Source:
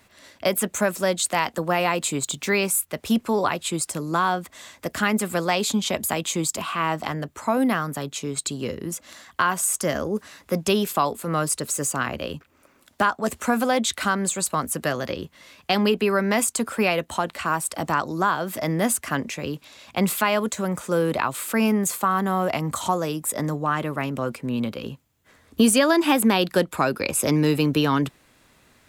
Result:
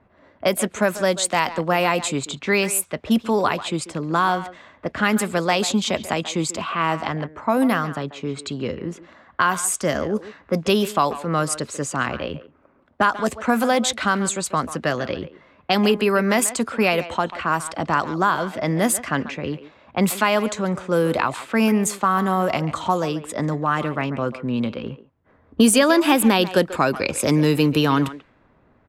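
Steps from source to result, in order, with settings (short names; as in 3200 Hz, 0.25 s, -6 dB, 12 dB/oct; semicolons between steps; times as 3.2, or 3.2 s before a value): speakerphone echo 0.14 s, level -13 dB; low-pass opened by the level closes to 1000 Hz, open at -17.5 dBFS; gain +2.5 dB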